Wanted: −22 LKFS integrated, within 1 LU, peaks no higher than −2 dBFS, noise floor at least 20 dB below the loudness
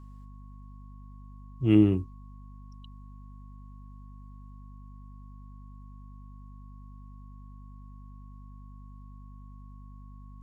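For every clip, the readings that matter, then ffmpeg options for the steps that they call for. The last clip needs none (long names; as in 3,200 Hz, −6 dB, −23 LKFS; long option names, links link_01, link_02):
mains hum 50 Hz; hum harmonics up to 250 Hz; level of the hum −45 dBFS; interfering tone 1,100 Hz; level of the tone −59 dBFS; integrated loudness −24.5 LKFS; sample peak −9.0 dBFS; target loudness −22.0 LKFS
→ -af "bandreject=frequency=50:width_type=h:width=6,bandreject=frequency=100:width_type=h:width=6,bandreject=frequency=150:width_type=h:width=6,bandreject=frequency=200:width_type=h:width=6,bandreject=frequency=250:width_type=h:width=6"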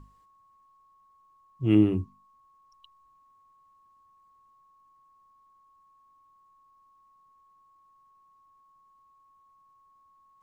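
mains hum none found; interfering tone 1,100 Hz; level of the tone −59 dBFS
→ -af "bandreject=frequency=1100:width=30"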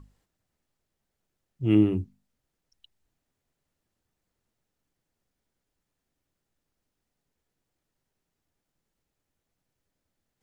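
interfering tone none found; integrated loudness −24.5 LKFS; sample peak −10.0 dBFS; target loudness −22.0 LKFS
→ -af "volume=2.5dB"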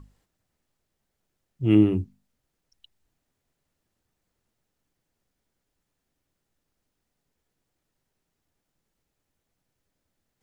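integrated loudness −22.0 LKFS; sample peak −7.5 dBFS; background noise floor −81 dBFS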